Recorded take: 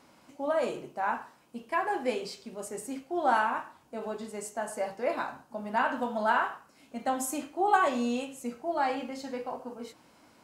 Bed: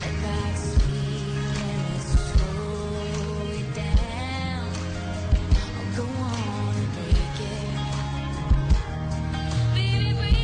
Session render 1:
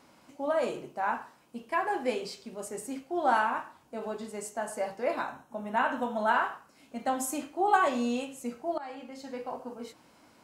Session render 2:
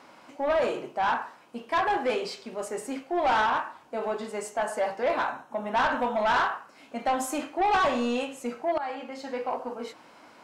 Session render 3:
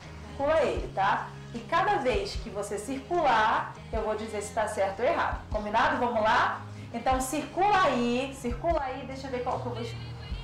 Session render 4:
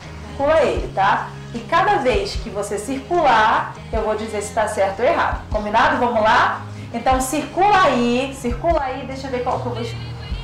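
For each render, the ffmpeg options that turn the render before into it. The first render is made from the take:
-filter_complex "[0:a]asettb=1/sr,asplit=3[a][b][c];[a]atrim=end=5.214[d];[b]atrim=start=5.21:end=6.34,asetpts=PTS-STARTPTS,afade=t=in:d=0.004:c=qsin,afade=t=out:st=1.126:d=0.004:c=qsin,asuperstop=centerf=4700:order=8:qfactor=5.2[e];[c]atrim=start=6.336[f];[d][e]acrossfade=d=0.004:c1=hsin:c2=qsin[g];[g][f]acrossfade=d=0.004:c1=qsin:c2=hsin,asplit=2[h][i];[h]atrim=end=8.78,asetpts=PTS-STARTPTS,afade=t=out:st=8.776:d=0.004:c=hsin:silence=0.141254[j];[i]atrim=start=8.78,asetpts=PTS-STARTPTS,afade=t=in:d=0.79:silence=0.141254[k];[j][k]concat=n=2:v=0:a=1"
-filter_complex "[0:a]asplit=2[a][b];[b]highpass=f=720:p=1,volume=17dB,asoftclip=type=tanh:threshold=-10.5dB[c];[a][c]amix=inputs=2:normalize=0,lowpass=f=2.1k:p=1,volume=-6dB,asoftclip=type=tanh:threshold=-19dB"
-filter_complex "[1:a]volume=-16.5dB[a];[0:a][a]amix=inputs=2:normalize=0"
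-af "volume=9.5dB"

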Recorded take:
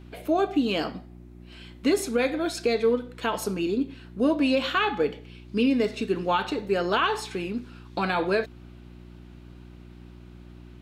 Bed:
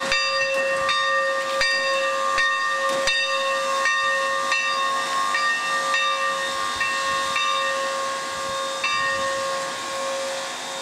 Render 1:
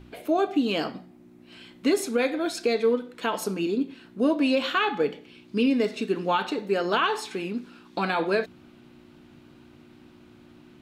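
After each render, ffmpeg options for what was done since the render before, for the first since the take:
-af "bandreject=f=60:t=h:w=4,bandreject=f=120:t=h:w=4,bandreject=f=180:t=h:w=4"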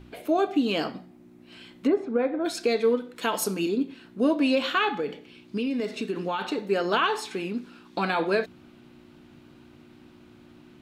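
-filter_complex "[0:a]asplit=3[a][b][c];[a]afade=t=out:st=1.86:d=0.02[d];[b]lowpass=1.2k,afade=t=in:st=1.86:d=0.02,afade=t=out:st=2.44:d=0.02[e];[c]afade=t=in:st=2.44:d=0.02[f];[d][e][f]amix=inputs=3:normalize=0,asettb=1/sr,asplit=3[g][h][i];[g]atrim=end=3.164[j];[h]atrim=start=3.16:end=3.69,asetpts=PTS-STARTPTS,afade=t=in:d=0.004:c=qsin,afade=t=out:st=0.526:d=0.004:c=qsin,highshelf=f=5.3k:g=9[k];[i]atrim=start=3.686[l];[j][k]acrossfade=d=0.004:c1=hsin:c2=qsin[m];[m][l]acrossfade=d=0.004:c1=qsin:c2=hsin,asettb=1/sr,asplit=3[n][o][p];[n]atrim=end=4.904[q];[o]atrim=start=4.9:end=6.46,asetpts=PTS-STARTPTS,afade=t=in:d=0.004:c=qsin,afade=t=out:st=1.556:d=0.004:c=qsin,acompressor=threshold=-24dB:ratio=6:attack=3.2:release=140:knee=1:detection=peak[r];[p]atrim=start=6.456[s];[q][r]acrossfade=d=0.004:c1=hsin:c2=qsin[t];[t][s]acrossfade=d=0.004:c1=qsin:c2=hsin"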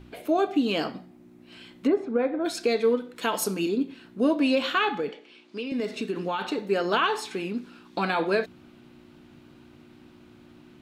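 -filter_complex "[0:a]asettb=1/sr,asplit=3[a][b][c];[a]atrim=end=5.094[d];[b]atrim=start=5.09:end=5.72,asetpts=PTS-STARTPTS,afade=t=in:d=0.004:c=qsin,afade=t=out:st=0.626:d=0.004:c=qsin,highpass=380,lowpass=7.4k[e];[c]atrim=start=5.716[f];[d][e]acrossfade=d=0.004:c1=hsin:c2=qsin[g];[g][f]acrossfade=d=0.004:c1=qsin:c2=hsin"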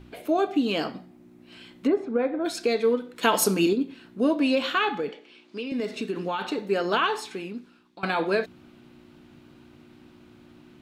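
-filter_complex "[0:a]asplit=4[a][b][c][d];[a]atrim=end=3.232[e];[b]atrim=start=3.228:end=3.732,asetpts=PTS-STARTPTS,volume=5.5dB[f];[c]atrim=start=3.728:end=8.03,asetpts=PTS-STARTPTS,afade=t=out:st=3.322:d=0.98:silence=0.112202[g];[d]atrim=start=8.03,asetpts=PTS-STARTPTS,afade=t=in:d=0.004:c=hsin:silence=0.112202[h];[e][f]acrossfade=d=0.004:c1=hsin:c2=hsin[i];[g][h]concat=n=2:v=0:a=1[j];[i][j]acrossfade=d=0.004:c1=hsin:c2=hsin"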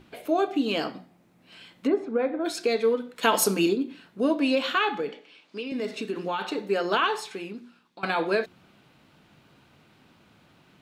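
-af "lowshelf=f=85:g=-11,bandreject=f=60:t=h:w=6,bandreject=f=120:t=h:w=6,bandreject=f=180:t=h:w=6,bandreject=f=240:t=h:w=6,bandreject=f=300:t=h:w=6,bandreject=f=360:t=h:w=6"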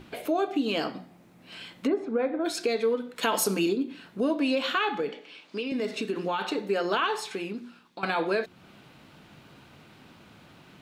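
-filter_complex "[0:a]asplit=2[a][b];[b]alimiter=limit=-17.5dB:level=0:latency=1,volume=-1dB[c];[a][c]amix=inputs=2:normalize=0,acompressor=threshold=-35dB:ratio=1.5"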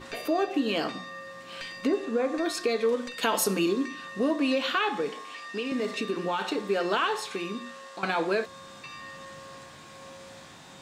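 -filter_complex "[1:a]volume=-20.5dB[a];[0:a][a]amix=inputs=2:normalize=0"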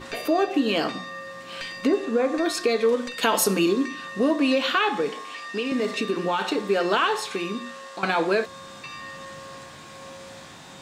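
-af "volume=4.5dB"

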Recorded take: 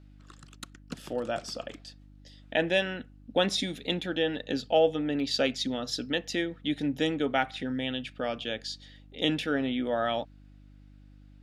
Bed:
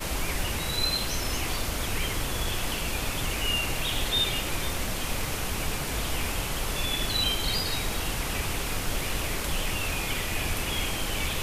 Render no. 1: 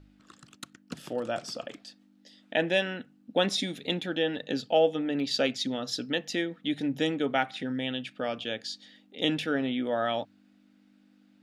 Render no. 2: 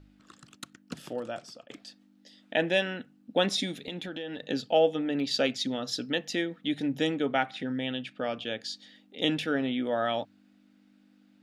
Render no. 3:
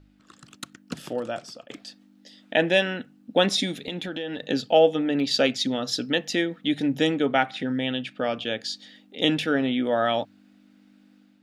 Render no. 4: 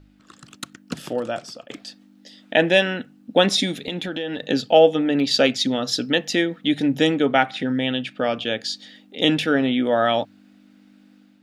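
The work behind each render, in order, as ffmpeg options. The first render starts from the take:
-af "bandreject=f=50:t=h:w=4,bandreject=f=100:t=h:w=4,bandreject=f=150:t=h:w=4"
-filter_complex "[0:a]asettb=1/sr,asplit=3[a][b][c];[a]atrim=end=3.784[d];[b]atrim=start=3.78:end=4.45,asetpts=PTS-STARTPTS,afade=t=in:d=0.004:c=qsin,afade=t=out:st=0.666:d=0.004:c=qsin,acompressor=threshold=-33dB:ratio=6:attack=3.2:release=140:knee=1:detection=peak[e];[c]atrim=start=4.446[f];[d][e]acrossfade=d=0.004:c1=hsin:c2=qsin[g];[g][f]acrossfade=d=0.004:c1=qsin:c2=hsin,asettb=1/sr,asplit=3[h][i][j];[h]atrim=end=7.204[k];[i]atrim=start=7.2:end=8.61,asetpts=PTS-STARTPTS,afade=t=in:d=0.004:c=qsin,afade=t=out:st=1.406:d=0.004:c=qsin,highshelf=f=6.2k:g=-6.5[l];[j]atrim=start=8.606[m];[k][l]acrossfade=d=0.004:c1=hsin:c2=qsin[n];[n][m]acrossfade=d=0.004:c1=qsin:c2=hsin,asplit=2[o][p];[o]atrim=end=1.7,asetpts=PTS-STARTPTS,afade=t=out:st=0.96:d=0.74:silence=0.11885[q];[p]atrim=start=1.7,asetpts=PTS-STARTPTS,afade=t=in:d=0.004:c=hsin:silence=0.11885[r];[q][r]concat=n=2:v=0:a=1"
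-af "dynaudnorm=f=260:g=3:m=5.5dB"
-af "volume=4dB,alimiter=limit=-2dB:level=0:latency=1"

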